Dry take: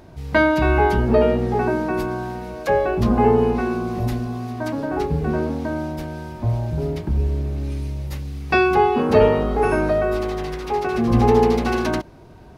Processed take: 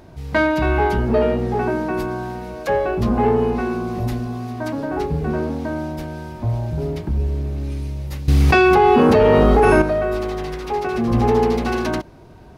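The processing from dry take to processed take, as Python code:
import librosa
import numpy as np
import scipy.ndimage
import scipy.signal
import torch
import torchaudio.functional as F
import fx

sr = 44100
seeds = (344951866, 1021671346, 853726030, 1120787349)

p1 = 10.0 ** (-18.0 / 20.0) * np.tanh(x / 10.0 ** (-18.0 / 20.0))
p2 = x + (p1 * librosa.db_to_amplitude(-4.0))
p3 = fx.env_flatten(p2, sr, amount_pct=100, at=(8.28, 9.82))
y = p3 * librosa.db_to_amplitude(-3.5)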